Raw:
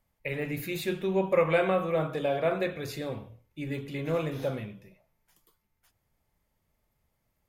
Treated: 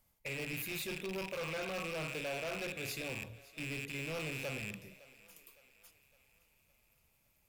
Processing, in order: rattling part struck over -44 dBFS, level -20 dBFS; high shelf 3500 Hz +10 dB; notch 1800 Hz, Q 13; reverse; compressor 6:1, threshold -32 dBFS, peak gain reduction 14 dB; reverse; hard clip -35.5 dBFS, distortion -8 dB; on a send: thinning echo 0.56 s, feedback 56%, high-pass 370 Hz, level -19 dB; on the sum: gain -1 dB

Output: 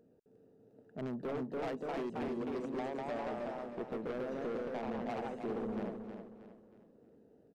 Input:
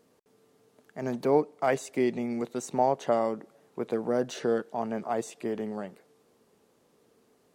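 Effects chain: Wiener smoothing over 41 samples; 2.28–2.96 HPF 260 Hz 24 dB/oct; compressor 6:1, threshold -33 dBFS, peak gain reduction 15 dB; echoes that change speed 0.355 s, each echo +1 st, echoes 2; soft clip -36 dBFS, distortion -9 dB; feedback echo 0.316 s, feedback 38%, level -8 dB; gain +1.5 dB

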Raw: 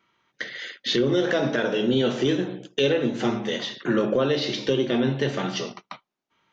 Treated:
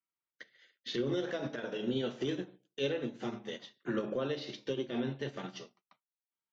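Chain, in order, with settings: limiter -16 dBFS, peak gain reduction 5 dB; upward expander 2.5:1, over -39 dBFS; gain -7 dB

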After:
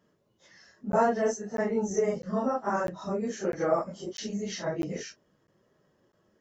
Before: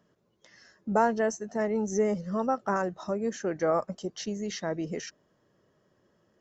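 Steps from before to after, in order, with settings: phase scrambler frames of 0.1 s; crackling interface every 0.65 s, samples 512, zero, from 0.92

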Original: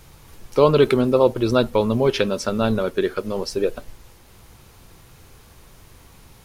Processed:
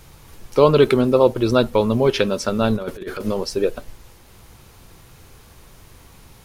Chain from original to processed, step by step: 2.76–3.34 negative-ratio compressor -26 dBFS, ratio -0.5; gain +1.5 dB

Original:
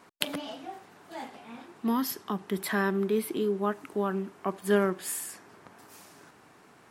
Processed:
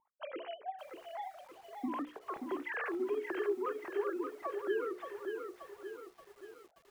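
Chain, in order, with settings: sine-wave speech; compressor 2:1, threshold -39 dBFS, peak gain reduction 11.5 dB; notches 60/120/180/240/300/360/420/480/540 Hz; low-pass opened by the level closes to 400 Hz, open at -33.5 dBFS; lo-fi delay 0.578 s, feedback 55%, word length 10-bit, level -5.5 dB

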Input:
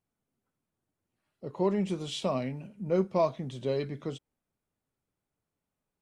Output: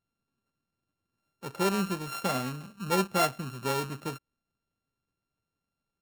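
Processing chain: sample sorter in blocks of 32 samples

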